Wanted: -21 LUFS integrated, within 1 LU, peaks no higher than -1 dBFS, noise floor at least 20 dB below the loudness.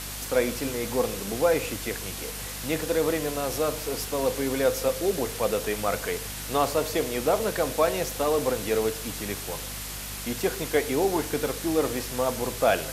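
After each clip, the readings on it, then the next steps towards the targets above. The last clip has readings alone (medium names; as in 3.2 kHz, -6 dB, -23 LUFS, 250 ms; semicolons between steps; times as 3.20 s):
hum 50 Hz; highest harmonic 250 Hz; hum level -39 dBFS; noise floor -36 dBFS; noise floor target -47 dBFS; loudness -27.0 LUFS; peak level -9.5 dBFS; loudness target -21.0 LUFS
-> hum notches 50/100/150/200/250 Hz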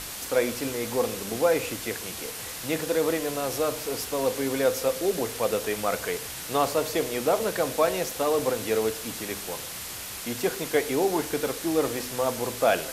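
hum not found; noise floor -37 dBFS; noise floor target -47 dBFS
-> noise print and reduce 10 dB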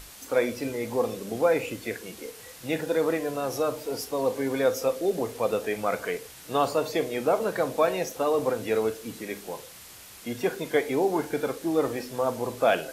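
noise floor -47 dBFS; noise floor target -48 dBFS
-> noise print and reduce 6 dB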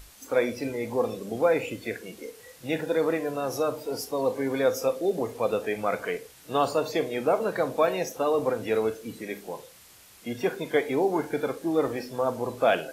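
noise floor -53 dBFS; loudness -28.0 LUFS; peak level -9.5 dBFS; loudness target -21.0 LUFS
-> trim +7 dB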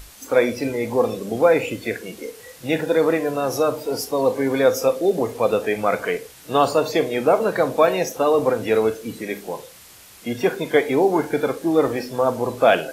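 loudness -21.0 LUFS; peak level -2.5 dBFS; noise floor -46 dBFS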